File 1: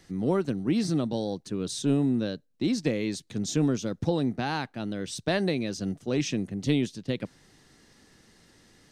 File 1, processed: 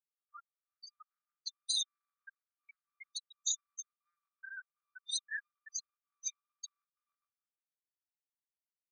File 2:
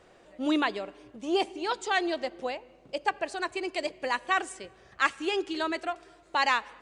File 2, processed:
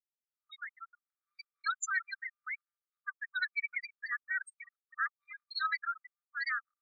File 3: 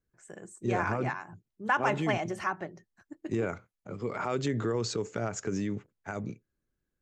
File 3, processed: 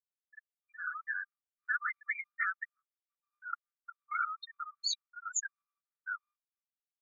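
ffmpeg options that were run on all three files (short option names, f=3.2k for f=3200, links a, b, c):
-filter_complex "[0:a]acompressor=threshold=-33dB:ratio=6,asplit=2[a][b];[b]aecho=0:1:312|624|936|1248|1560:0.141|0.0805|0.0459|0.0262|0.0149[c];[a][c]amix=inputs=2:normalize=0,alimiter=level_in=7.5dB:limit=-24dB:level=0:latency=1:release=19,volume=-7.5dB,asplit=2[d][e];[e]acrusher=bits=4:mode=log:mix=0:aa=0.000001,volume=-4dB[f];[d][f]amix=inputs=2:normalize=0,adynamicequalizer=threshold=0.00251:dfrequency=320:dqfactor=5.5:tfrequency=320:tqfactor=5.5:attack=5:release=100:ratio=0.375:range=1.5:mode=boostabove:tftype=bell,acrusher=bits=10:mix=0:aa=0.000001,afftfilt=real='re*gte(hypot(re,im),0.0316)':imag='im*gte(hypot(re,im),0.0316)':win_size=1024:overlap=0.75,asubboost=boost=9.5:cutoff=200,dynaudnorm=f=270:g=7:m=11dB,afftfilt=real='re*eq(mod(floor(b*sr/1024/1200),2),1)':imag='im*eq(mod(floor(b*sr/1024/1200),2),1)':win_size=1024:overlap=0.75"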